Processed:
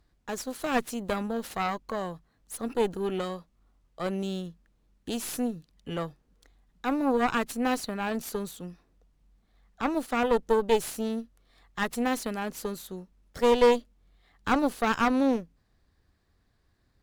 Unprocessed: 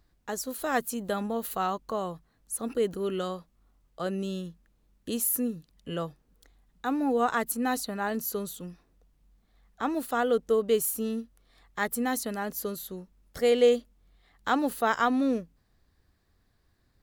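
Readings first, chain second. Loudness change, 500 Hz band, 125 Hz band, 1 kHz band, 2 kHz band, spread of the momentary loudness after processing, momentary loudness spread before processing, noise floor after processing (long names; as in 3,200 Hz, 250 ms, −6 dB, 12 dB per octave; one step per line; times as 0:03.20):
0.0 dB, 0.0 dB, +1.0 dB, +0.5 dB, +1.0 dB, 15 LU, 13 LU, −70 dBFS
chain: running median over 3 samples
harmonic generator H 4 −11 dB, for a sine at −11 dBFS
slew-rate limiting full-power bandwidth 190 Hz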